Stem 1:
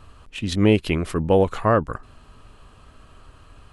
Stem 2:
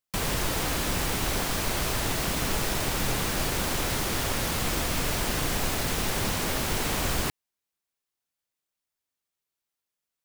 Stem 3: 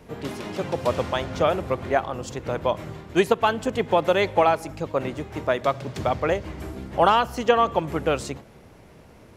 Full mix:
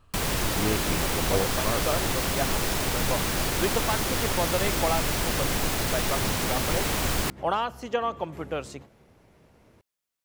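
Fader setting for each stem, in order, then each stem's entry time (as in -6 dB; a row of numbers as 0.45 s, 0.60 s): -12.0 dB, +1.0 dB, -8.5 dB; 0.00 s, 0.00 s, 0.45 s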